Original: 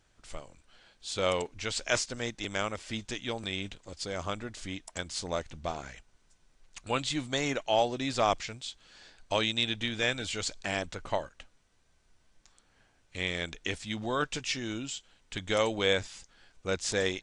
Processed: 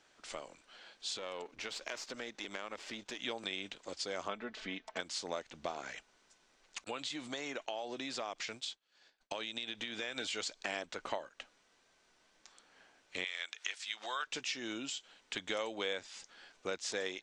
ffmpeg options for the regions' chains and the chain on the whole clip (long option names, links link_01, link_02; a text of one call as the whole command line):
ffmpeg -i in.wav -filter_complex "[0:a]asettb=1/sr,asplit=3[link_01][link_02][link_03];[link_01]atrim=end=1.174[link_04];[link_02]atrim=start=1.17:end=3.2,asetpts=PTS-STARTPTS,afade=type=in:duration=0.004:curve=qsin,afade=type=out:start_time=2.026:duration=0.004:curve=qsin,aeval=exprs='if(lt(val(0),0),0.447*val(0),val(0))':channel_layout=same,highshelf=frequency=4400:gain=-5.5,acompressor=threshold=-40dB:ratio=4:attack=3.2:release=140:knee=1:detection=peak[link_05];[link_03]atrim=start=3.196[link_06];[link_04][link_05]acrossfade=duration=0.004:curve1=hsin:curve2=qsin[link_07];[link_07][link_06]acrossfade=duration=0.004:curve1=qsin:curve2=hsin,asettb=1/sr,asplit=3[link_08][link_09][link_10];[link_08]atrim=end=4.284[link_11];[link_09]atrim=start=4.28:end=5,asetpts=PTS-STARTPTS,afade=type=in:duration=0.004:curve=qsin,afade=type=out:start_time=0.716:duration=0.004:curve=qsin,lowpass=3200,aecho=1:1:4.6:0.51,atrim=end_sample=31752[link_12];[link_10]atrim=start=4.996[link_13];[link_11][link_12]acrossfade=duration=0.004:curve1=hsin:curve2=qsin[link_14];[link_14][link_13]acrossfade=duration=0.004:curve1=qsin:curve2=hsin,asettb=1/sr,asplit=3[link_15][link_16][link_17];[link_15]atrim=end=6.844[link_18];[link_16]atrim=start=6.84:end=10.17,asetpts=PTS-STARTPTS,afade=type=in:duration=0.004:curve=qsin,afade=type=out:start_time=3.326:duration=0.004:curve=qsin,agate=range=-33dB:threshold=-44dB:ratio=3:release=100:detection=peak,acompressor=threshold=-37dB:ratio=4:attack=3.2:release=140:knee=1:detection=peak[link_19];[link_17]atrim=start=10.166[link_20];[link_18][link_19]acrossfade=duration=0.004:curve1=hsin:curve2=qsin[link_21];[link_21][link_20]acrossfade=duration=0.004:curve1=qsin:curve2=hsin,asettb=1/sr,asplit=3[link_22][link_23][link_24];[link_22]atrim=end=13.244[link_25];[link_23]atrim=start=13.24:end=14.27,asetpts=PTS-STARTPTS,afade=type=in:duration=0.004:curve=qsin,afade=type=out:start_time=1.026:duration=0.004:curve=qsin,highpass=1200,acompressor=mode=upward:threshold=-38dB:ratio=2.5:attack=3.2:release=140:knee=2.83:detection=peak[link_26];[link_24]atrim=start=14.266[link_27];[link_25][link_26]acrossfade=duration=0.004:curve1=hsin:curve2=qsin[link_28];[link_28][link_27]acrossfade=duration=0.004:curve1=qsin:curve2=hsin,lowshelf=frequency=260:gain=-5.5,acompressor=threshold=-41dB:ratio=4,acrossover=split=200 7700:gain=0.126 1 0.224[link_29][link_30][link_31];[link_29][link_30][link_31]amix=inputs=3:normalize=0,volume=4.5dB" out.wav